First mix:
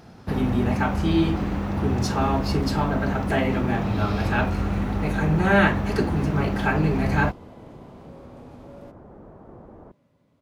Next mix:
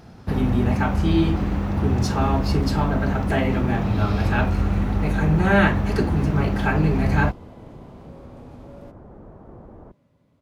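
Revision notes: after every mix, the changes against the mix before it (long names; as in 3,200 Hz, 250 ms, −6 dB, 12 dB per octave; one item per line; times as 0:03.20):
master: add low-shelf EQ 110 Hz +7 dB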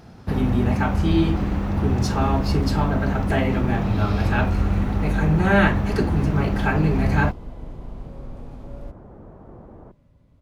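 second sound: remove Bessel high-pass filter 180 Hz, order 2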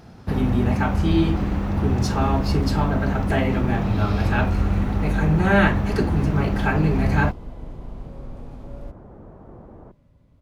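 nothing changed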